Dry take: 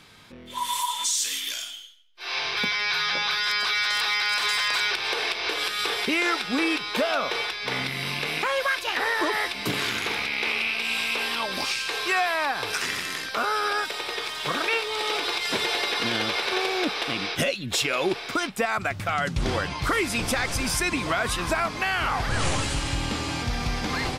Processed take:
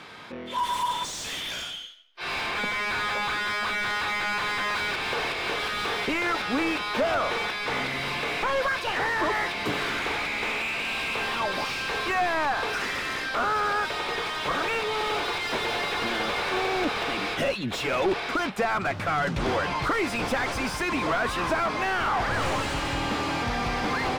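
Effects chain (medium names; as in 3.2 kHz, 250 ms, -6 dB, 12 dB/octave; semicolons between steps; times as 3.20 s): 2.46–4.76 s: low-pass 3.6 kHz 6 dB/octave; overdrive pedal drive 23 dB, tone 1 kHz, clips at -14 dBFS; trim -1.5 dB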